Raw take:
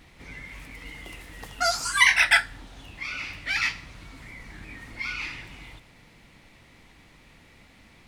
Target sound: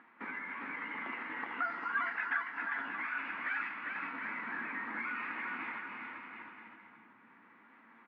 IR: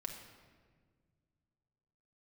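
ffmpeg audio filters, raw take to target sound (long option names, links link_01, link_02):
-filter_complex "[0:a]flanger=delay=8.4:depth=2.3:regen=55:speed=0.87:shape=triangular,agate=range=-50dB:threshold=-48dB:ratio=16:detection=peak,asplit=2[link_01][link_02];[1:a]atrim=start_sample=2205,asetrate=57330,aresample=44100[link_03];[link_02][link_03]afir=irnorm=-1:irlink=0,volume=-7.5dB[link_04];[link_01][link_04]amix=inputs=2:normalize=0,alimiter=limit=-16.5dB:level=0:latency=1:release=466,acompressor=mode=upward:threshold=-31dB:ratio=2.5,equalizer=frequency=1200:width=1.9:gain=10,acompressor=threshold=-39dB:ratio=4,highpass=frequency=230:width=0.5412,highpass=frequency=230:width=1.3066,equalizer=frequency=240:width_type=q:width=4:gain=8,equalizer=frequency=570:width_type=q:width=4:gain=-4,equalizer=frequency=950:width_type=q:width=4:gain=6,equalizer=frequency=1600:width_type=q:width=4:gain=9,lowpass=frequency=2400:width=0.5412,lowpass=frequency=2400:width=1.3066,aecho=1:1:400|720|976|1181|1345:0.631|0.398|0.251|0.158|0.1,volume=-1.5dB"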